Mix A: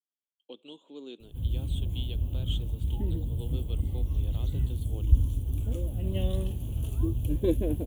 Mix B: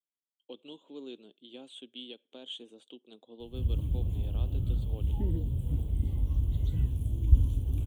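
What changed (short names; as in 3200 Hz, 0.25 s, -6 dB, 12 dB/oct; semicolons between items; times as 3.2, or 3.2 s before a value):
background: entry +2.20 s; master: add high shelf 6600 Hz -7.5 dB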